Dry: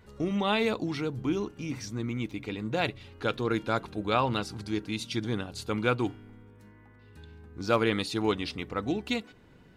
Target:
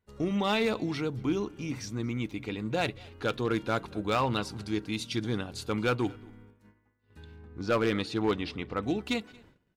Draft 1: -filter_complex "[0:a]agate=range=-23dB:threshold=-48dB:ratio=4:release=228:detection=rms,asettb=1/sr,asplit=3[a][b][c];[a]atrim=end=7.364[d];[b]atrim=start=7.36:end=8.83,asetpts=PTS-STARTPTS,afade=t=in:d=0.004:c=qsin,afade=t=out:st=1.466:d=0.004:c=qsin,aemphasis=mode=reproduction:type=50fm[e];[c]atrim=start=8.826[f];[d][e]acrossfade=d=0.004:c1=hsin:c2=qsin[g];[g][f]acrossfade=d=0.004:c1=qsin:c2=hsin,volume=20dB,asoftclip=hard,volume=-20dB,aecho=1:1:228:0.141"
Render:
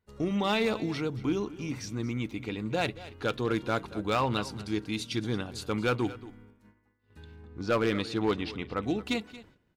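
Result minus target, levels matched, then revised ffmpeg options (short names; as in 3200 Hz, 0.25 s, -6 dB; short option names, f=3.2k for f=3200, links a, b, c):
echo-to-direct +8.5 dB
-filter_complex "[0:a]agate=range=-23dB:threshold=-48dB:ratio=4:release=228:detection=rms,asettb=1/sr,asplit=3[a][b][c];[a]atrim=end=7.364[d];[b]atrim=start=7.36:end=8.83,asetpts=PTS-STARTPTS,afade=t=in:d=0.004:c=qsin,afade=t=out:st=1.466:d=0.004:c=qsin,aemphasis=mode=reproduction:type=50fm[e];[c]atrim=start=8.826[f];[d][e]acrossfade=d=0.004:c1=hsin:c2=qsin[g];[g][f]acrossfade=d=0.004:c1=qsin:c2=hsin,volume=20dB,asoftclip=hard,volume=-20dB,aecho=1:1:228:0.0531"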